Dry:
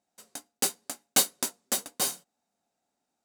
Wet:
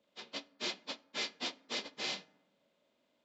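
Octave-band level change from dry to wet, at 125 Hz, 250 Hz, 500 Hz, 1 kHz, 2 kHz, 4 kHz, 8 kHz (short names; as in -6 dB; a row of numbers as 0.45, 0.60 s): -11.0, -8.0, -7.0, -9.5, -2.5, -4.5, -21.5 dB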